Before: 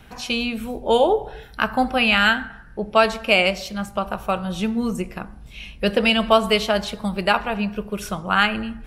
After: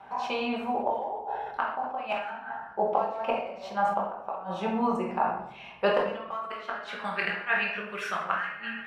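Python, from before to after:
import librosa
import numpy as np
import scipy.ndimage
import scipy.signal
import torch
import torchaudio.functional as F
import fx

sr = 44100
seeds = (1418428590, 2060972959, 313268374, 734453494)

p1 = scipy.signal.sosfilt(scipy.signal.butter(2, 48.0, 'highpass', fs=sr, output='sos'), x)
p2 = (np.mod(10.0 ** (7.5 / 20.0) * p1 + 1.0, 2.0) - 1.0) / 10.0 ** (7.5 / 20.0)
p3 = p1 + (p2 * librosa.db_to_amplitude(-11.0))
p4 = fx.filter_sweep_bandpass(p3, sr, from_hz=860.0, to_hz=1800.0, start_s=5.55, end_s=7.36, q=4.3)
p5 = fx.gate_flip(p4, sr, shuts_db=-22.0, range_db=-24)
p6 = fx.room_shoebox(p5, sr, seeds[0], volume_m3=190.0, walls='mixed', distance_m=1.2)
p7 = fx.sustainer(p6, sr, db_per_s=77.0)
y = p7 * librosa.db_to_amplitude(7.5)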